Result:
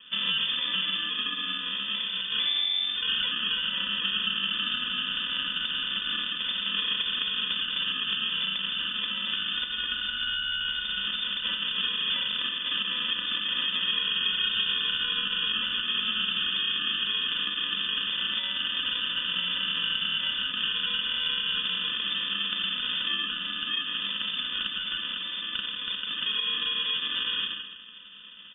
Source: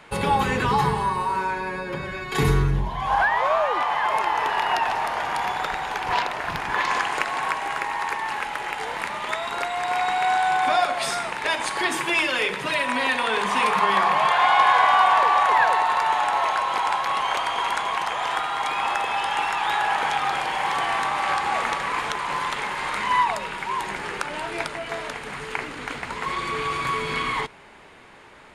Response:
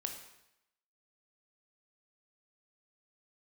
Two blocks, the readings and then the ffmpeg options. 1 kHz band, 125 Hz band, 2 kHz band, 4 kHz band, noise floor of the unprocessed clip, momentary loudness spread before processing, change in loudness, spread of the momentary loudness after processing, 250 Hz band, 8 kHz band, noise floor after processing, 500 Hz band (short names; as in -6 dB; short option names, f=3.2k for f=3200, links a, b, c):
-22.5 dB, under -15 dB, -7.0 dB, +8.5 dB, -35 dBFS, 10 LU, -3.5 dB, 4 LU, -10.5 dB, under -40 dB, -35 dBFS, -23.5 dB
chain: -filter_complex "[0:a]bandreject=f=64.43:t=h:w=4,bandreject=f=128.86:t=h:w=4,bandreject=f=193.29:t=h:w=4,bandreject=f=257.72:t=h:w=4,bandreject=f=322.15:t=h:w=4,bandreject=f=386.58:t=h:w=4,bandreject=f=451.01:t=h:w=4,bandreject=f=515.44:t=h:w=4,bandreject=f=579.87:t=h:w=4,bandreject=f=644.3:t=h:w=4,bandreject=f=708.73:t=h:w=4,bandreject=f=773.16:t=h:w=4,bandreject=f=837.59:t=h:w=4,bandreject=f=902.02:t=h:w=4,bandreject=f=966.45:t=h:w=4,bandreject=f=1.03088k:t=h:w=4,bandreject=f=1.09531k:t=h:w=4,bandreject=f=1.15974k:t=h:w=4,bandreject=f=1.22417k:t=h:w=4,bandreject=f=1.2886k:t=h:w=4,bandreject=f=1.35303k:t=h:w=4,bandreject=f=1.41746k:t=h:w=4,bandreject=f=1.48189k:t=h:w=4,bandreject=f=1.54632k:t=h:w=4,bandreject=f=1.61075k:t=h:w=4,bandreject=f=1.67518k:t=h:w=4,bandreject=f=1.73961k:t=h:w=4,bandreject=f=1.80404k:t=h:w=4,bandreject=f=1.86847k:t=h:w=4,bandreject=f=1.9329k:t=h:w=4,bandreject=f=1.99733k:t=h:w=4,bandreject=f=2.06176k:t=h:w=4,bandreject=f=2.12619k:t=h:w=4,bandreject=f=2.19062k:t=h:w=4,bandreject=f=2.25505k:t=h:w=4,bandreject=f=2.31948k:t=h:w=4,bandreject=f=2.38391k:t=h:w=4[a];[1:a]atrim=start_sample=2205[b];[a][b]afir=irnorm=-1:irlink=0,acrusher=samples=31:mix=1:aa=0.000001,lowpass=f=3.1k:t=q:w=0.5098,lowpass=f=3.1k:t=q:w=0.6013,lowpass=f=3.1k:t=q:w=0.9,lowpass=f=3.1k:t=q:w=2.563,afreqshift=-3600,equalizer=f=190:w=2:g=13,acompressor=threshold=-27dB:ratio=6,aecho=1:1:4:0.58"